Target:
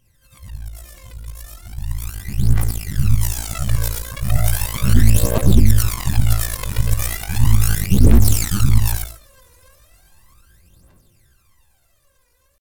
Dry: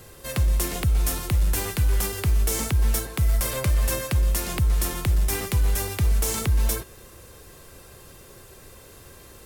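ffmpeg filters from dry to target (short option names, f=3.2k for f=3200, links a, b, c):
-af "afftfilt=real='re':imag='-im':win_size=8192:overlap=0.75,equalizer=f=430:w=4:g=-12,dynaudnorm=f=270:g=17:m=16.5dB,aphaser=in_gain=1:out_gain=1:delay=2.1:decay=0.77:speed=0.48:type=triangular,aeval=exprs='2.99*(cos(1*acos(clip(val(0)/2.99,-1,1)))-cos(1*PI/2))+0.237*(cos(2*acos(clip(val(0)/2.99,-1,1)))-cos(2*PI/2))+0.0211*(cos(3*acos(clip(val(0)/2.99,-1,1)))-cos(3*PI/2))+0.0531*(cos(4*acos(clip(val(0)/2.99,-1,1)))-cos(4*PI/2))+1.33*(cos(6*acos(clip(val(0)/2.99,-1,1)))-cos(6*PI/2))':c=same,atempo=0.75,volume=-14dB"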